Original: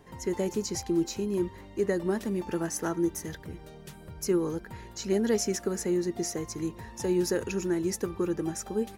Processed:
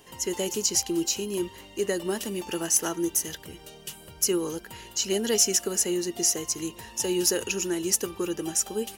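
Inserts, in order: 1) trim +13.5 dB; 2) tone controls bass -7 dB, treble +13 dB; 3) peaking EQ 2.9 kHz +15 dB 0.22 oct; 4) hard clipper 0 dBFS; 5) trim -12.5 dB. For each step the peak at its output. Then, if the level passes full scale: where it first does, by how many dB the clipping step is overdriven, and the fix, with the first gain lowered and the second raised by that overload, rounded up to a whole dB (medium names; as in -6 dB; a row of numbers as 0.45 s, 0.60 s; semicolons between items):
-1.5 dBFS, +5.5 dBFS, +5.5 dBFS, 0.0 dBFS, -12.5 dBFS; step 2, 5.5 dB; step 1 +7.5 dB, step 5 -6.5 dB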